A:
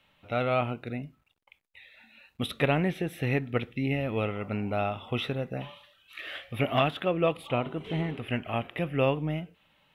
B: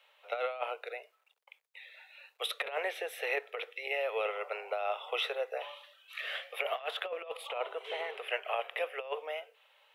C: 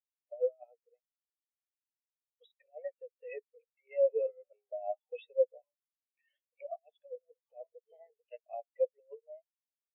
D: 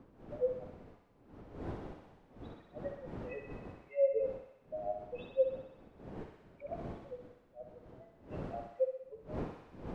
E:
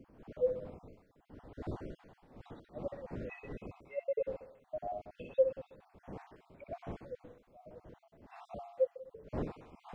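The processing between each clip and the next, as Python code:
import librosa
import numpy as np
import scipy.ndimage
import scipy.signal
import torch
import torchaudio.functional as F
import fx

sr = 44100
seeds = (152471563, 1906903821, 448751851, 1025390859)

y1 = scipy.signal.sosfilt(scipy.signal.butter(12, 440.0, 'highpass', fs=sr, output='sos'), x)
y1 = fx.over_compress(y1, sr, threshold_db=-31.0, ratio=-0.5)
y1 = F.gain(torch.from_numpy(y1), -1.5).numpy()
y2 = fx.peak_eq(y1, sr, hz=1400.0, db=-6.5, octaves=0.36)
y2 = fx.spectral_expand(y2, sr, expansion=4.0)
y3 = fx.dmg_wind(y2, sr, seeds[0], corner_hz=390.0, level_db=-47.0)
y3 = fx.echo_thinned(y3, sr, ms=63, feedback_pct=76, hz=610.0, wet_db=-5)
y3 = F.gain(torch.from_numpy(y3), -2.0).numpy()
y4 = fx.spec_dropout(y3, sr, seeds[1], share_pct=38)
y4 = F.gain(torch.from_numpy(y4), 2.0).numpy()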